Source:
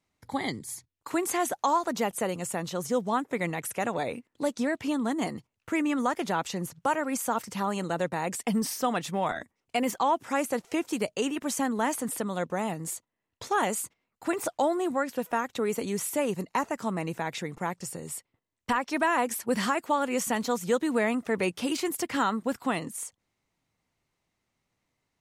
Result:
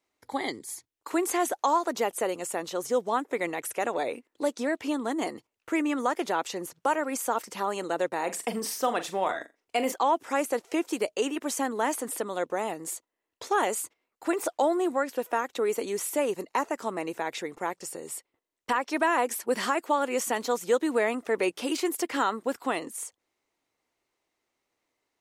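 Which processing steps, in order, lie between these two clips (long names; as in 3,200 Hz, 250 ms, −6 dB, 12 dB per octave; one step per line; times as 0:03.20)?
low shelf with overshoot 240 Hz −11.5 dB, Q 1.5
0:08.15–0:09.92: flutter between parallel walls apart 7.2 metres, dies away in 0.22 s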